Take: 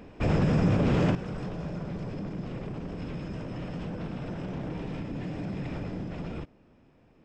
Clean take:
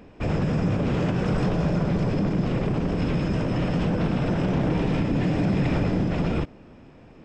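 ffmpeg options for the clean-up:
-af "asetnsamples=n=441:p=0,asendcmd='1.15 volume volume 12dB',volume=1"

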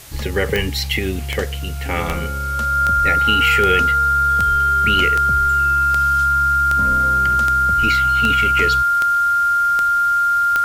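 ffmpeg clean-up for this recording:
-af "adeclick=t=4,bandreject=f=1400:w=30,afwtdn=0.011"

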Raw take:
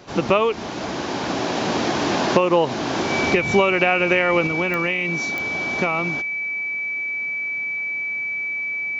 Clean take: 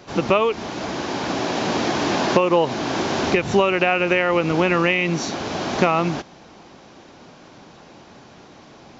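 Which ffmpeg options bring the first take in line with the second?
-af "adeclick=t=4,bandreject=f=2300:w=30,asetnsamples=n=441:p=0,asendcmd='4.47 volume volume 5.5dB',volume=1"

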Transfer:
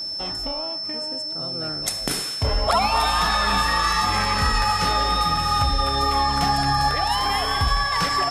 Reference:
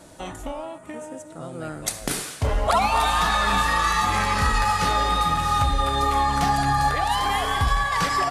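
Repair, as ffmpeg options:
-af "bandreject=f=5300:w=30"

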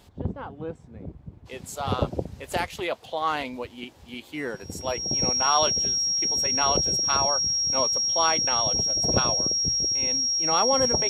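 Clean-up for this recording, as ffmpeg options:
-af "bandreject=f=5600:w=30"

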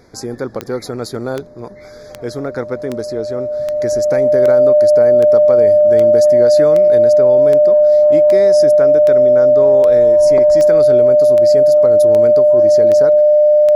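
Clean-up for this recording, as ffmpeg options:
-af "adeclick=t=4,bandreject=f=600:w=30"

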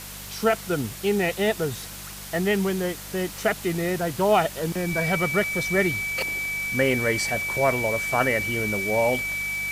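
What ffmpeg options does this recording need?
-af "adeclick=t=4,bandreject=f=49.4:t=h:w=4,bandreject=f=98.8:t=h:w=4,bandreject=f=148.2:t=h:w=4,bandreject=f=197.6:t=h:w=4,bandreject=f=2300:w=30,afftdn=nr=30:nf=-38"

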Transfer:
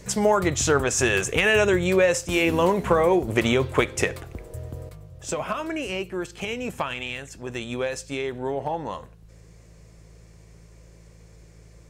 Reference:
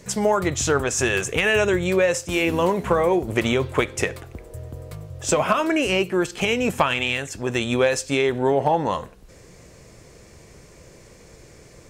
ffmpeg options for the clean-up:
-af "bandreject=f=54.8:t=h:w=4,bandreject=f=109.6:t=h:w=4,bandreject=f=164.4:t=h:w=4,asetnsamples=n=441:p=0,asendcmd='4.89 volume volume 8.5dB',volume=1"

